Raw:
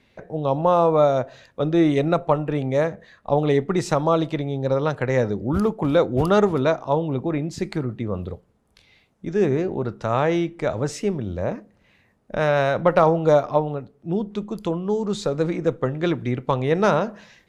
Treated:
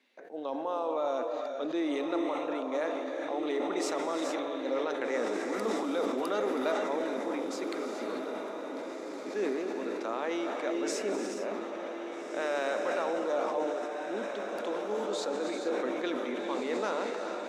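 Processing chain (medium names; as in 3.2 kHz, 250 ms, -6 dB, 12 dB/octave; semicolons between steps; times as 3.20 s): elliptic high-pass 250 Hz, stop band 50 dB; peak limiter -13.5 dBFS, peak gain reduction 9 dB; peaking EQ 440 Hz -5 dB 3 oct; echo that smears into a reverb 1660 ms, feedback 52%, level -6.5 dB; gated-style reverb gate 470 ms rising, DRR 4 dB; decay stretcher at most 25 dB/s; trim -6.5 dB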